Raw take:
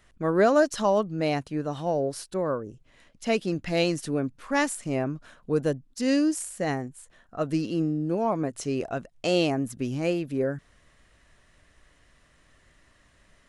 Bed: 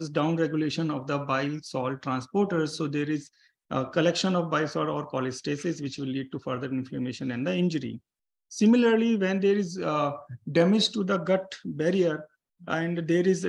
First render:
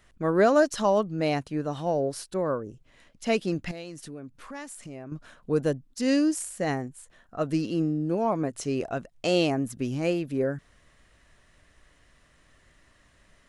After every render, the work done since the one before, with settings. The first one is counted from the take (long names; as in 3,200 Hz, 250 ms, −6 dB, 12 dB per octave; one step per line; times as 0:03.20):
0:03.71–0:05.12: downward compressor 3 to 1, threshold −41 dBFS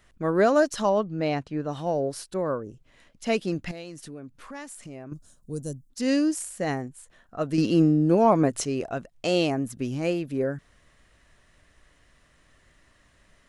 0:00.89–0:01.69: high-frequency loss of the air 93 metres
0:05.13–0:05.90: drawn EQ curve 100 Hz 0 dB, 2,200 Hz −23 dB, 7,400 Hz +8 dB
0:07.58–0:08.65: clip gain +7 dB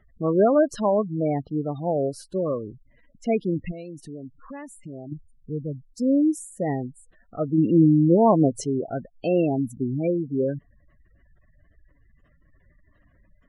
gate on every frequency bin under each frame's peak −15 dB strong
tilt shelving filter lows +4 dB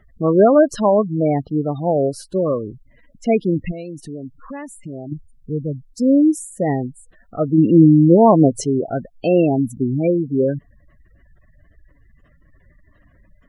level +6.5 dB
brickwall limiter −1 dBFS, peak gain reduction 1 dB